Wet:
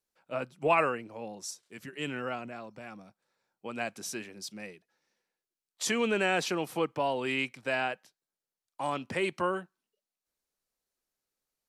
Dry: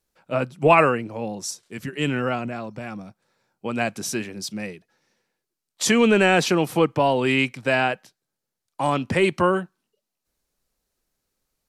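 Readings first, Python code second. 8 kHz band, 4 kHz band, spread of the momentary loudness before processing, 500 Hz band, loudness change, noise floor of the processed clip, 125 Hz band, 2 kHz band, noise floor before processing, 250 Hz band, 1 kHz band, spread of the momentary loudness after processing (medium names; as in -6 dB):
-9.0 dB, -9.0 dB, 17 LU, -10.5 dB, -10.5 dB, under -85 dBFS, -15.5 dB, -9.0 dB, -83 dBFS, -13.0 dB, -9.5 dB, 18 LU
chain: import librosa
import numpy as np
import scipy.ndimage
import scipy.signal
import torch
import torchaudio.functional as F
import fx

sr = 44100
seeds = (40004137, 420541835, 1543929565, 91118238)

y = fx.low_shelf(x, sr, hz=200.0, db=-10.5)
y = F.gain(torch.from_numpy(y), -9.0).numpy()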